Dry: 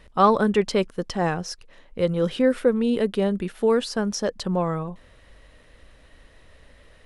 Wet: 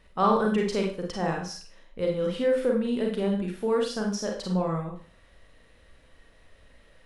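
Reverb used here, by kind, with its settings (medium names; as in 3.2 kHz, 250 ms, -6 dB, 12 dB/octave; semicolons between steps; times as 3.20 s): Schroeder reverb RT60 0.41 s, combs from 33 ms, DRR 0 dB; trim -7.5 dB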